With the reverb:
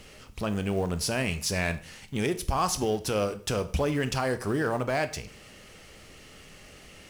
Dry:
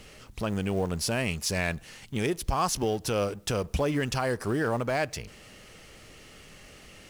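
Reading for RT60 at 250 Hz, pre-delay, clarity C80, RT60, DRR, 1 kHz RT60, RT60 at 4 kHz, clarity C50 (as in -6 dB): 0.45 s, 6 ms, 19.0 dB, 0.45 s, 10.5 dB, 0.45 s, 0.45 s, 15.0 dB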